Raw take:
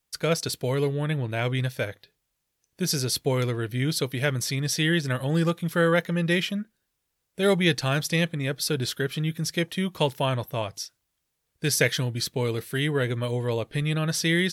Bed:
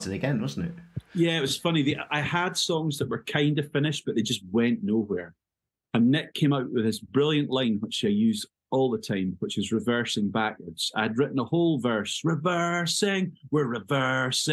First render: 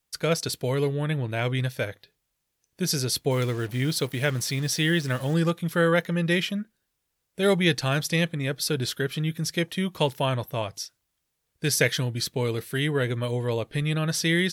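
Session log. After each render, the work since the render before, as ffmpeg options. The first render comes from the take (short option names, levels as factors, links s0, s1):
-filter_complex "[0:a]asettb=1/sr,asplit=3[s0][s1][s2];[s0]atrim=end=3.314[s3];[s1]atrim=start=3.31:end=5.34,asetpts=PTS-STARTPTS,afade=t=in:d=0.004:c=qsin,afade=t=out:st=2.026:d=0.004:c=qsin,acrusher=bits=6:mix=0:aa=0.5[s4];[s2]atrim=start=5.336[s5];[s3][s4]acrossfade=d=0.004:c1=hsin:c2=qsin[s6];[s6][s5]acrossfade=d=0.004:c1=qsin:c2=hsin"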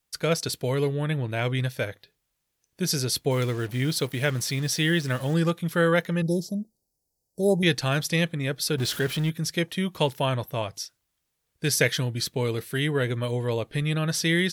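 -filter_complex "[0:a]asettb=1/sr,asplit=3[s0][s1][s2];[s0]atrim=end=6.224[s3];[s1]atrim=start=6.22:end=7.63,asetpts=PTS-STARTPTS,afade=t=in:d=0.004:c=qsin,afade=t=out:st=1.406:d=0.004:c=qsin,asuperstop=centerf=2000:order=12:qfactor=0.54[s4];[s2]atrim=start=7.626[s5];[s3][s4]acrossfade=d=0.004:c1=hsin:c2=qsin[s6];[s6][s5]acrossfade=d=0.004:c1=qsin:c2=hsin,asettb=1/sr,asplit=3[s7][s8][s9];[s7]atrim=end=8.784[s10];[s8]atrim=start=8.78:end=9.3,asetpts=PTS-STARTPTS,afade=t=in:d=0.004:c=qsin,afade=t=out:st=0.516:d=0.004:c=qsin,aeval=exprs='val(0)+0.5*0.0237*sgn(val(0))':c=same[s11];[s9]atrim=start=9.296[s12];[s10][s11]acrossfade=d=0.004:c1=hsin:c2=qsin[s13];[s13][s12]acrossfade=d=0.004:c1=qsin:c2=hsin"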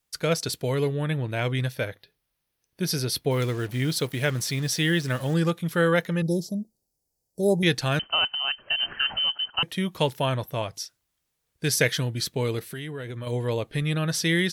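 -filter_complex "[0:a]asettb=1/sr,asplit=3[s0][s1][s2];[s0]atrim=end=1.744[s3];[s1]atrim=start=1.74:end=3.4,asetpts=PTS-STARTPTS,afade=t=in:d=0.004:c=qsin,afade=t=out:st=1.656:d=0.004:c=qsin,equalizer=f=7200:t=o:w=0.38:g=-10[s4];[s2]atrim=start=3.396[s5];[s3][s4]acrossfade=d=0.004:c1=hsin:c2=qsin[s6];[s6][s5]acrossfade=d=0.004:c1=qsin:c2=hsin,asettb=1/sr,asplit=3[s7][s8][s9];[s7]atrim=end=7.994[s10];[s8]atrim=start=7.99:end=9.63,asetpts=PTS-STARTPTS,afade=t=in:d=0.004:c=qsin,afade=t=out:st=1.636:d=0.004:c=qsin,lowpass=f=2700:t=q:w=0.5098,lowpass=f=2700:t=q:w=0.6013,lowpass=f=2700:t=q:w=0.9,lowpass=f=2700:t=q:w=2.563,afreqshift=-3200[s11];[s9]atrim=start=9.626[s12];[s10][s11]acrossfade=d=0.004:c1=hsin:c2=qsin[s13];[s13][s12]acrossfade=d=0.004:c1=qsin:c2=hsin,asettb=1/sr,asplit=3[s14][s15][s16];[s14]atrim=end=12.594[s17];[s15]atrim=start=12.59:end=13.27,asetpts=PTS-STARTPTS,afade=t=in:d=0.004:c=qsin,afade=t=out:st=0.676:d=0.004:c=qsin,acompressor=threshold=0.0251:ratio=5:attack=3.2:release=140:knee=1:detection=peak[s18];[s16]atrim=start=13.266[s19];[s17][s18]acrossfade=d=0.004:c1=hsin:c2=qsin[s20];[s20][s19]acrossfade=d=0.004:c1=qsin:c2=hsin"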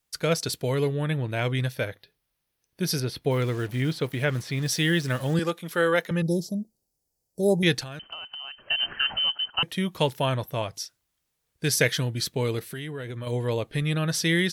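-filter_complex "[0:a]asettb=1/sr,asplit=3[s0][s1][s2];[s0]atrim=end=3.004[s3];[s1]atrim=start=3:end=4.66,asetpts=PTS-STARTPTS,afade=t=in:d=0.004:c=qsin,afade=t=out:st=1.656:d=0.004:c=qsin,acrossover=split=3200[s4][s5];[s5]acompressor=threshold=0.00631:ratio=4:attack=1:release=60[s6];[s4][s6]amix=inputs=2:normalize=0[s7];[s2]atrim=start=4.656[s8];[s3][s7]acrossfade=d=0.004:c1=hsin:c2=qsin[s9];[s9][s8]acrossfade=d=0.004:c1=qsin:c2=hsin,asettb=1/sr,asplit=3[s10][s11][s12];[s10]atrim=end=5.394[s13];[s11]atrim=start=5.39:end=6.11,asetpts=PTS-STARTPTS,afade=t=in:d=0.004:c=qsin,afade=t=out:st=0.716:d=0.004:c=qsin,highpass=280[s14];[s12]atrim=start=6.106[s15];[s13][s14]acrossfade=d=0.004:c1=hsin:c2=qsin[s16];[s16][s15]acrossfade=d=0.004:c1=qsin:c2=hsin,asettb=1/sr,asplit=3[s17][s18][s19];[s17]atrim=end=7.824[s20];[s18]atrim=start=7.82:end=8.63,asetpts=PTS-STARTPTS,afade=t=in:d=0.004:c=qsin,afade=t=out:st=0.806:d=0.004:c=qsin,acompressor=threshold=0.02:ratio=12:attack=3.2:release=140:knee=1:detection=peak[s21];[s19]atrim=start=8.626[s22];[s20][s21]acrossfade=d=0.004:c1=hsin:c2=qsin[s23];[s23][s22]acrossfade=d=0.004:c1=qsin:c2=hsin"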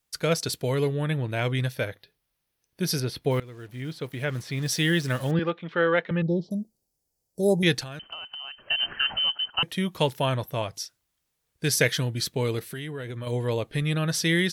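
-filter_complex "[0:a]asettb=1/sr,asplit=3[s0][s1][s2];[s0]atrim=end=5.314[s3];[s1]atrim=start=5.31:end=6.51,asetpts=PTS-STARTPTS,afade=t=in:d=0.004:c=qsin,afade=t=out:st=1.196:d=0.004:c=qsin,lowpass=f=3300:w=0.5412,lowpass=f=3300:w=1.3066[s4];[s2]atrim=start=6.506[s5];[s3][s4]acrossfade=d=0.004:c1=hsin:c2=qsin[s6];[s6][s5]acrossfade=d=0.004:c1=qsin:c2=hsin,asplit=2[s7][s8];[s7]atrim=end=3.4,asetpts=PTS-STARTPTS,afade=t=out:st=3.396:d=0.004:c=hsin:silence=0.1[s9];[s8]atrim=start=3.4,asetpts=PTS-STARTPTS,afade=t=in:d=1.41:silence=0.1[s10];[s9][s10]concat=n=2:v=0:a=1"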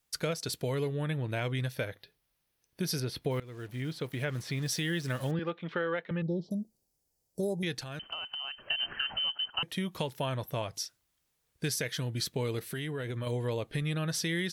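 -af "alimiter=limit=0.178:level=0:latency=1:release=415,acompressor=threshold=0.0251:ratio=2.5"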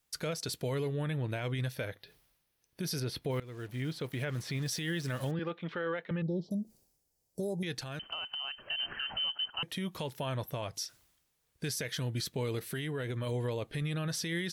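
-af "alimiter=level_in=1.33:limit=0.0631:level=0:latency=1:release=23,volume=0.75,areverse,acompressor=mode=upward:threshold=0.002:ratio=2.5,areverse"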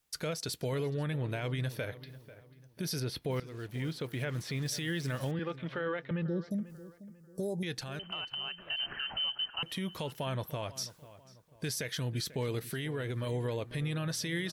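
-filter_complex "[0:a]asplit=2[s0][s1];[s1]adelay=492,lowpass=f=2300:p=1,volume=0.158,asplit=2[s2][s3];[s3]adelay=492,lowpass=f=2300:p=1,volume=0.39,asplit=2[s4][s5];[s5]adelay=492,lowpass=f=2300:p=1,volume=0.39[s6];[s0][s2][s4][s6]amix=inputs=4:normalize=0"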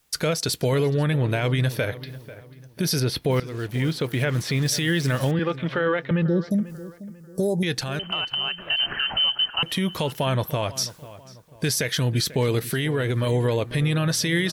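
-af "volume=3.98"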